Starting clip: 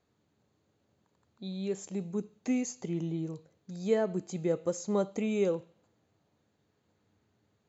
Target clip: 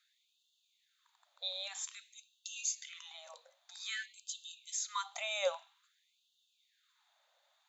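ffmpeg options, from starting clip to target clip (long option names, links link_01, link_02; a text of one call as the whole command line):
ffmpeg -i in.wav -af "equalizer=frequency=3600:width_type=o:width=0.22:gain=11.5,afftfilt=real='re*gte(b*sr/1024,500*pow(2700/500,0.5+0.5*sin(2*PI*0.51*pts/sr)))':imag='im*gte(b*sr/1024,500*pow(2700/500,0.5+0.5*sin(2*PI*0.51*pts/sr)))':win_size=1024:overlap=0.75,volume=5dB" out.wav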